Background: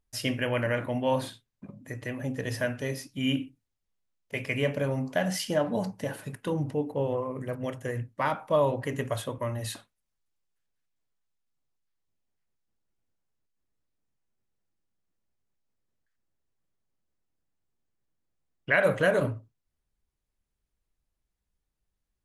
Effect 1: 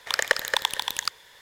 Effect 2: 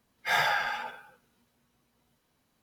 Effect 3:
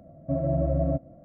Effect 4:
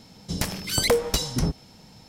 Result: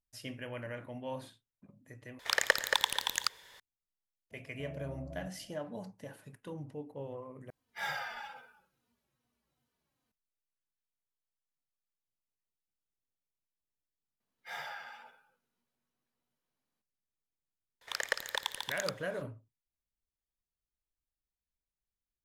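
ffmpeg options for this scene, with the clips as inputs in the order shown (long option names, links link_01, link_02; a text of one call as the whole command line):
ffmpeg -i bed.wav -i cue0.wav -i cue1.wav -i cue2.wav -filter_complex "[1:a]asplit=2[link_01][link_02];[2:a]asplit=2[link_03][link_04];[0:a]volume=-14dB[link_05];[3:a]acompressor=threshold=-30dB:ratio=6:attack=3.2:release=140:knee=1:detection=peak[link_06];[link_03]asplit=2[link_07][link_08];[link_08]adelay=3.2,afreqshift=-2.5[link_09];[link_07][link_09]amix=inputs=2:normalize=1[link_10];[link_04]highpass=frequency=150:poles=1[link_11];[link_05]asplit=3[link_12][link_13][link_14];[link_12]atrim=end=2.194[link_15];[link_01]atrim=end=1.41,asetpts=PTS-STARTPTS,volume=-4.5dB[link_16];[link_13]atrim=start=3.596:end=7.504[link_17];[link_10]atrim=end=2.62,asetpts=PTS-STARTPTS,volume=-8.5dB[link_18];[link_14]atrim=start=10.116[link_19];[link_06]atrim=end=1.24,asetpts=PTS-STARTPTS,volume=-12dB,afade=type=in:duration=0.004:curve=hsin,afade=type=out:start_time=1.236:duration=0.004:curve=hsin,adelay=4310[link_20];[link_11]atrim=end=2.62,asetpts=PTS-STARTPTS,volume=-16.5dB,afade=type=in:duration=0.004:curve=hsin,afade=type=out:start_time=2.616:duration=0.004:curve=hsin,adelay=14200[link_21];[link_02]atrim=end=1.41,asetpts=PTS-STARTPTS,volume=-11dB,afade=type=in:duration=0.004:curve=hsin,afade=type=out:start_time=1.406:duration=0.004:curve=hsin,adelay=17810[link_22];[link_15][link_16]acrossfade=duration=0.004:curve1=hsin:curve2=hsin[link_23];[link_23][link_17]acrossfade=duration=0.004:curve1=hsin:curve2=hsin[link_24];[link_24][link_18]acrossfade=duration=0.004:curve1=hsin:curve2=hsin[link_25];[link_25][link_19]acrossfade=duration=0.004:curve1=hsin:curve2=hsin[link_26];[link_26][link_20][link_21][link_22]amix=inputs=4:normalize=0" out.wav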